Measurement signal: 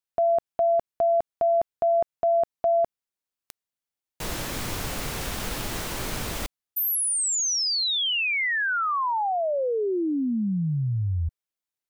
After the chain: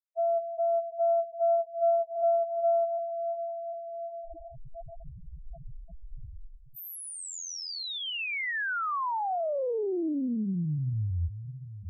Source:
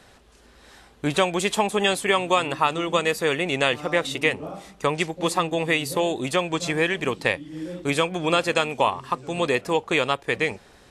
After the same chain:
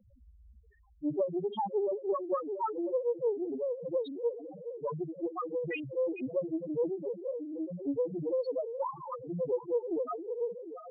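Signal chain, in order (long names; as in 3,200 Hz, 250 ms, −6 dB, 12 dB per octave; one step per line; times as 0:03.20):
feedback delay that plays each chunk backwards 373 ms, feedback 73%, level −10 dB
reversed playback
upward compression, threshold −39 dBFS
reversed playback
spectral peaks only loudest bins 1
highs frequency-modulated by the lows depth 0.17 ms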